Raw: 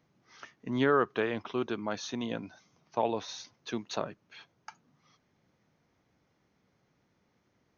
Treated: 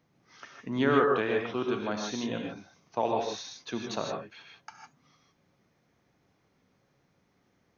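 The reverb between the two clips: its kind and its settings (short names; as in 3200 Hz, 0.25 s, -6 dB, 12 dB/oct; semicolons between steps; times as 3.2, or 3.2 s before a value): non-linear reverb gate 0.18 s rising, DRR 1 dB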